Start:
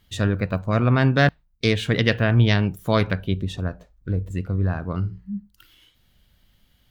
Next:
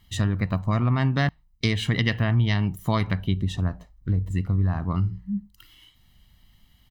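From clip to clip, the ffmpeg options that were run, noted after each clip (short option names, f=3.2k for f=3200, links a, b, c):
-af "aecho=1:1:1:0.57,acompressor=threshold=-19dB:ratio=4"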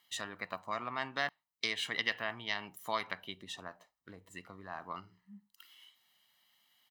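-af "highpass=640,volume=-5.5dB"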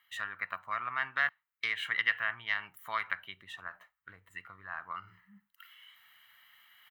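-af "firequalizer=gain_entry='entry(100,0);entry(230,-11);entry(870,-2);entry(1400,12);entry(4900,-11);entry(15000,3)':delay=0.05:min_phase=1,areverse,acompressor=mode=upward:threshold=-48dB:ratio=2.5,areverse,volume=-2.5dB"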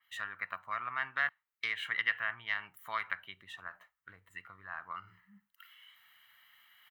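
-af "adynamicequalizer=threshold=0.00708:dfrequency=3200:dqfactor=0.7:tfrequency=3200:tqfactor=0.7:attack=5:release=100:ratio=0.375:range=2:mode=cutabove:tftype=highshelf,volume=-2dB"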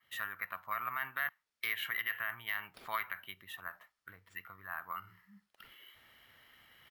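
-af "alimiter=level_in=1dB:limit=-24dB:level=0:latency=1:release=37,volume=-1dB,acrusher=samples=3:mix=1:aa=0.000001,volume=1dB"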